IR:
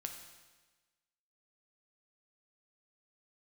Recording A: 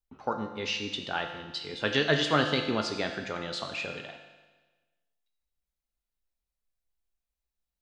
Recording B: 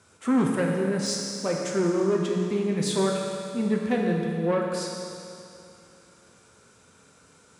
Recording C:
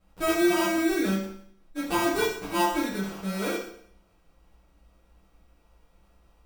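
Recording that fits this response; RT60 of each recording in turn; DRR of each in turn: A; 1.3 s, 2.6 s, 0.60 s; 4.0 dB, -1.0 dB, -8.5 dB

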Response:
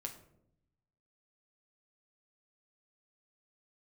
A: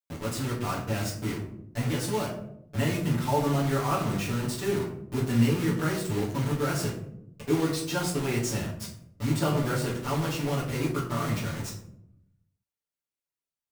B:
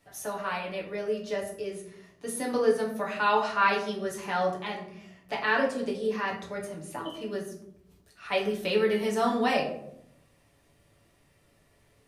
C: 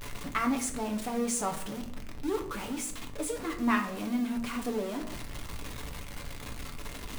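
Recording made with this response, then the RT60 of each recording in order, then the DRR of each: C; 0.75 s, 0.75 s, 0.75 s; -9.5 dB, -2.5 dB, 2.5 dB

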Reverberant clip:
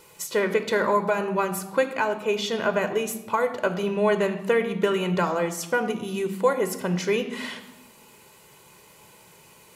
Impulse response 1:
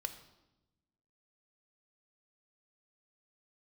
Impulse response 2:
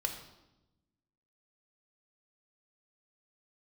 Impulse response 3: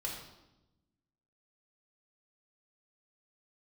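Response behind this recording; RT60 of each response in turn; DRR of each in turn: 1; 0.95 s, 0.95 s, 0.95 s; 7.5 dB, 3.5 dB, -3.0 dB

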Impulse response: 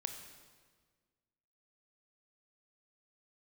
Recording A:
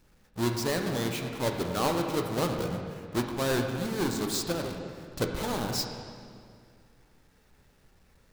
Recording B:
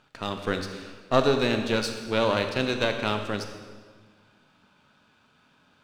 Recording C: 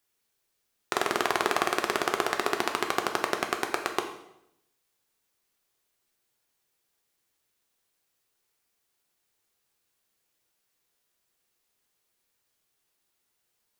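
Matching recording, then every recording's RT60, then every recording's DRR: B; 2.2 s, 1.6 s, 0.80 s; 2.5 dB, 6.0 dB, 3.5 dB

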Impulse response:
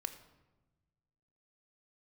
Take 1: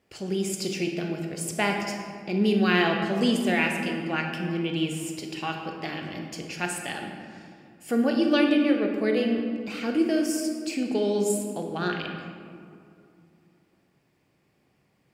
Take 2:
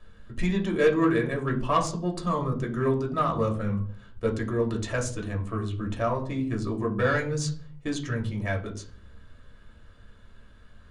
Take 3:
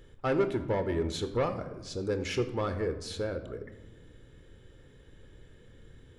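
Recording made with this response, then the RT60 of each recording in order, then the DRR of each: 3; 2.4 s, 0.50 s, 1.1 s; 2.0 dB, -0.5 dB, 8.5 dB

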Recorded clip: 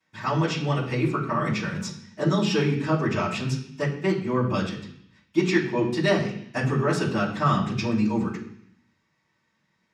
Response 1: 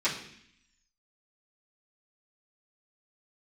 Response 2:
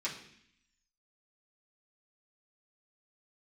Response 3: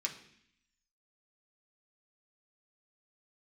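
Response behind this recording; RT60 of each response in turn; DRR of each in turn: 1; 0.65 s, 0.65 s, 0.65 s; -13.0 dB, -8.0 dB, 0.0 dB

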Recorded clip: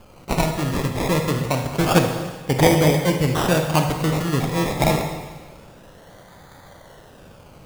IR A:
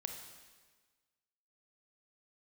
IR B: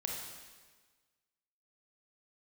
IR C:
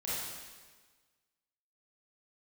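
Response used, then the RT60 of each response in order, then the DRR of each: A; 1.4 s, 1.4 s, 1.4 s; 4.0 dB, -1.0 dB, -9.5 dB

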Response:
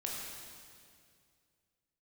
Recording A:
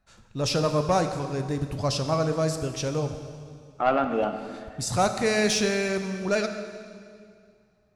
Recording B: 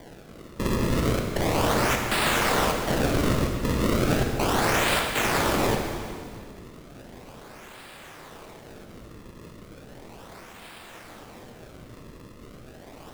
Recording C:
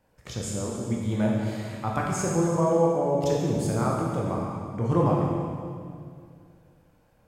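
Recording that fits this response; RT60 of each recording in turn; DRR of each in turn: C; 2.2 s, 2.2 s, 2.2 s; 6.5 dB, 2.0 dB, -3.5 dB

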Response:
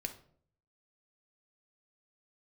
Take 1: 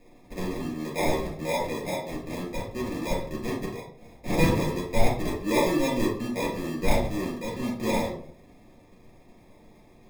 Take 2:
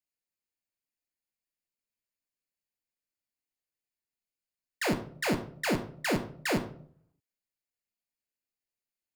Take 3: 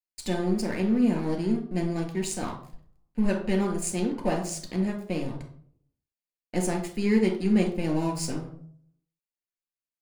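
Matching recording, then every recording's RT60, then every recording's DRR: 2; 0.55 s, 0.60 s, 0.55 s; -5.5 dB, 6.0 dB, 1.0 dB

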